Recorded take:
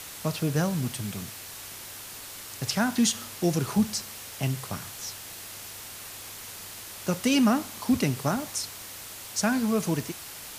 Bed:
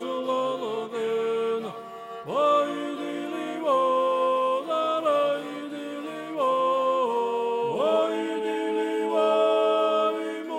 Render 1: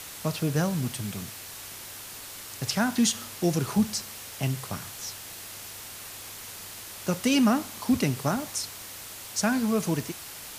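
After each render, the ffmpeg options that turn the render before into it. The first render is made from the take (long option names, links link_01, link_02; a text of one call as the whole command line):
ffmpeg -i in.wav -af anull out.wav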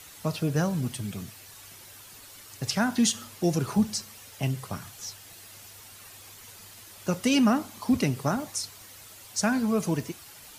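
ffmpeg -i in.wav -af "afftdn=noise_reduction=9:noise_floor=-42" out.wav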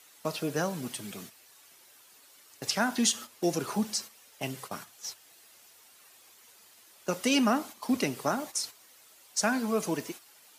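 ffmpeg -i in.wav -af "agate=range=-9dB:threshold=-39dB:ratio=16:detection=peak,highpass=290" out.wav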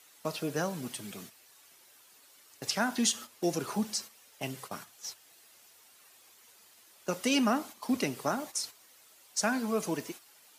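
ffmpeg -i in.wav -af "volume=-2dB" out.wav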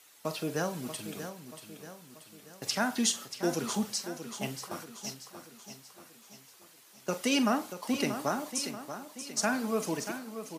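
ffmpeg -i in.wav -filter_complex "[0:a]asplit=2[link_01][link_02];[link_02]adelay=44,volume=-13dB[link_03];[link_01][link_03]amix=inputs=2:normalize=0,aecho=1:1:634|1268|1902|2536|3170:0.316|0.155|0.0759|0.0372|0.0182" out.wav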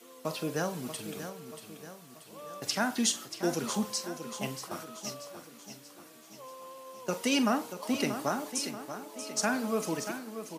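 ffmpeg -i in.wav -i bed.wav -filter_complex "[1:a]volume=-24dB[link_01];[0:a][link_01]amix=inputs=2:normalize=0" out.wav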